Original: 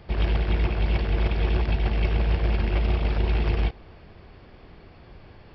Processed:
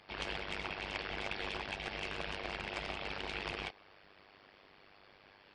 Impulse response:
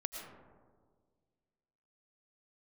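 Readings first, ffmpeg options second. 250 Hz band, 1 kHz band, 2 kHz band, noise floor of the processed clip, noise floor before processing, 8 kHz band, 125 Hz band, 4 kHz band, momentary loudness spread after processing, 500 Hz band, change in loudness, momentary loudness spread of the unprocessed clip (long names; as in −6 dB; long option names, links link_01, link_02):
−16.5 dB, −7.0 dB, −4.0 dB, −62 dBFS, −49 dBFS, can't be measured, −27.0 dB, −3.0 dB, 2 LU, −12.0 dB, −14.5 dB, 1 LU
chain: -af "aeval=exprs='0.282*(cos(1*acos(clip(val(0)/0.282,-1,1)))-cos(1*PI/2))+0.00178*(cos(2*acos(clip(val(0)/0.282,-1,1)))-cos(2*PI/2))+0.0282*(cos(3*acos(clip(val(0)/0.282,-1,1)))-cos(3*PI/2))+0.00562*(cos(4*acos(clip(val(0)/0.282,-1,1)))-cos(4*PI/2))':channel_layout=same,asoftclip=type=hard:threshold=-19.5dB,highpass=frequency=1300:poles=1,tremolo=f=99:d=0.889,volume=4.5dB" -ar 22050 -c:a libmp3lame -b:a 56k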